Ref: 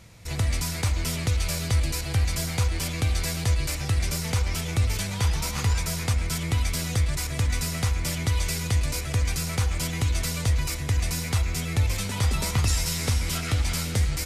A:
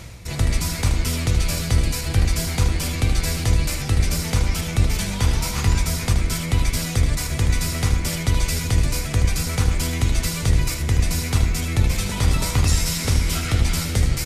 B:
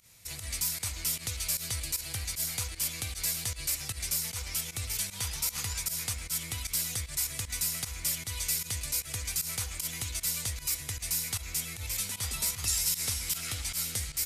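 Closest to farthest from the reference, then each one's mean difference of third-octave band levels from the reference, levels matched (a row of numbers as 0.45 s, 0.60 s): A, B; 2.0 dB, 7.0 dB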